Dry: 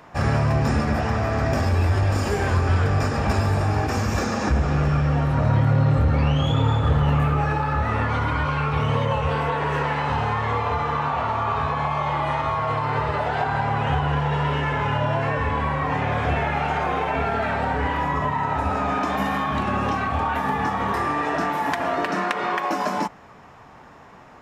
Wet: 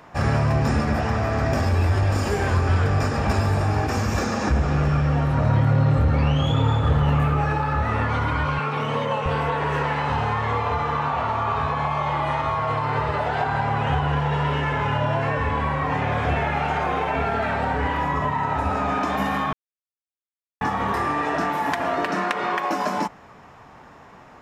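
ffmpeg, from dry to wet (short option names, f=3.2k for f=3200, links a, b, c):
-filter_complex "[0:a]asettb=1/sr,asplit=3[a][b][c];[a]atrim=end=8.594[d];[b]atrim=start=8.59:end=9.26,asetpts=PTS-STARTPTS,afade=t=in:d=0.004:c=qsin,afade=t=out:st=0.666:d=0.004:c=qsin,highpass=f=160:w=0.5412,highpass=f=160:w=1.3066[e];[c]atrim=start=9.256[f];[d][e]acrossfade=d=0.004:c1=hsin:c2=qsin[g];[g][f]acrossfade=d=0.004:c1=qsin:c2=hsin,asplit=3[h][i][j];[h]atrim=end=19.53,asetpts=PTS-STARTPTS,afade=t=out:st=19.526:d=0.004:c=hsin[k];[i]atrim=start=19.53:end=20.61,asetpts=PTS-STARTPTS,volume=0[l];[j]atrim=start=20.61,asetpts=PTS-STARTPTS,afade=t=in:d=0.004:c=hsin[m];[k][l][m]concat=n=3:v=0:a=1"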